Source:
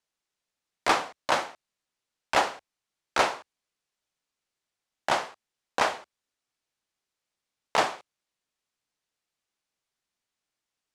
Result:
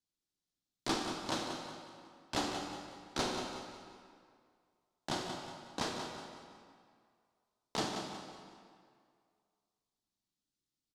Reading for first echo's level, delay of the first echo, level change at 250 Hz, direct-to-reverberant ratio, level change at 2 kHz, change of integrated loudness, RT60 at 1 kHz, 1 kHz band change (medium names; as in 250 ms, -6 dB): -8.0 dB, 183 ms, +1.0 dB, 1.0 dB, -14.0 dB, -11.5 dB, 2.1 s, -13.0 dB